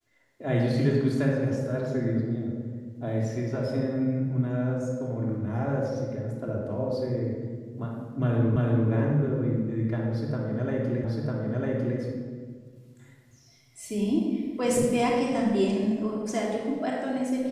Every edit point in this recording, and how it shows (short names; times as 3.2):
8.56 repeat of the last 0.34 s
11.04 repeat of the last 0.95 s